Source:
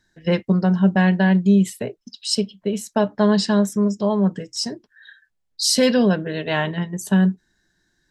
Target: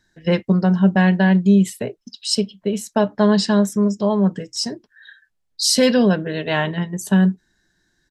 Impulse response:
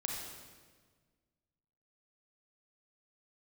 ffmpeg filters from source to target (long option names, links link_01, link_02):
-af "aresample=32000,aresample=44100,volume=1.5dB"